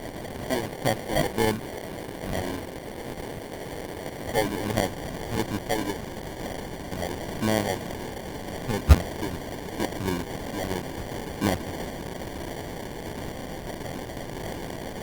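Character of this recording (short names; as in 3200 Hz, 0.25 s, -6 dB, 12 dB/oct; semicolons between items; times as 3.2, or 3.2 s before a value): a quantiser's noise floor 6-bit, dither triangular; phasing stages 8, 1.5 Hz, lowest notch 130–1500 Hz; aliases and images of a low sample rate 1300 Hz, jitter 0%; Opus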